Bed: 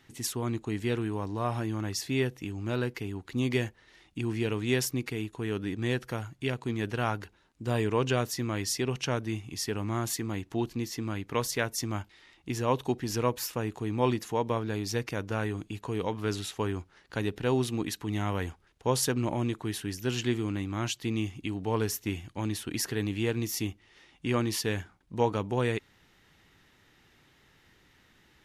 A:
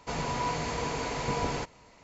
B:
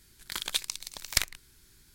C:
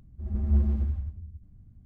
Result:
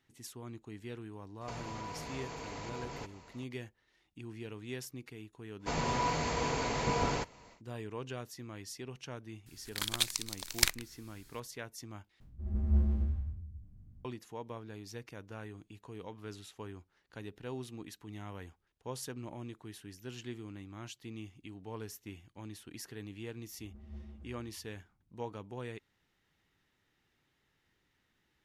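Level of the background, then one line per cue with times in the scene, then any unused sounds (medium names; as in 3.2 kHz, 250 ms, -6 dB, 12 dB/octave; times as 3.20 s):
bed -14.5 dB
1.41 s: add A -1.5 dB + compression, threshold -39 dBFS
5.59 s: add A -1 dB, fades 0.10 s
9.46 s: add B -1 dB
12.20 s: replace with C -5 dB + spectral sustain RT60 0.45 s
23.40 s: add C -17 dB + bass shelf 160 Hz -10 dB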